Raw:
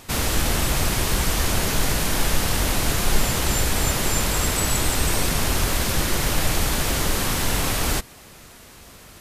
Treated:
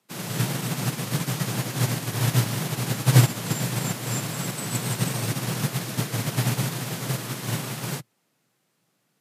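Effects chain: frequency shift +110 Hz; upward expansion 2.5:1, over -33 dBFS; trim +3.5 dB

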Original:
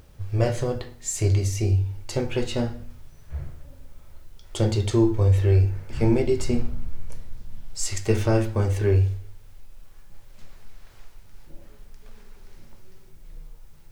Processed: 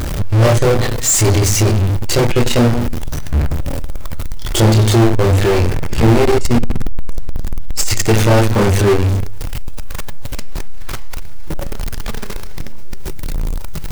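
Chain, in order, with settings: chorus voices 2, 0.75 Hz, delay 26 ms, depth 1.1 ms; power-law waveshaper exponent 0.35; trim +5.5 dB

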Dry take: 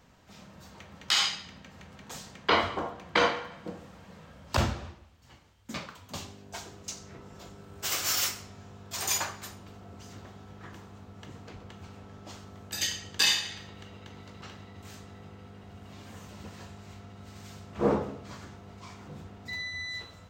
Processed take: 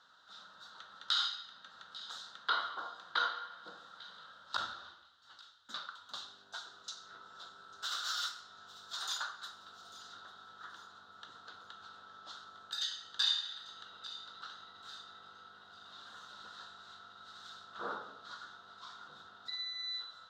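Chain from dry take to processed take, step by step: two resonant band-passes 2.3 kHz, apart 1.4 oct; feedback echo behind a high-pass 845 ms, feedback 36%, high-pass 2.6 kHz, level -22.5 dB; compression 1.5:1, threshold -56 dBFS, peak gain reduction 10.5 dB; trim +9.5 dB

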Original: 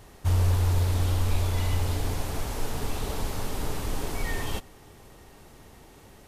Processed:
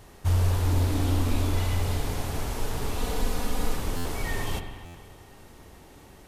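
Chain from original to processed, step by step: 0.65–1.58 s: peaking EQ 280 Hz +13 dB 0.4 oct; 2.98–3.76 s: comb 4.1 ms, depth 67%; spring tank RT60 1.9 s, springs 46/60 ms, chirp 30 ms, DRR 6.5 dB; buffer glitch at 3.96/4.85 s, samples 512, times 7

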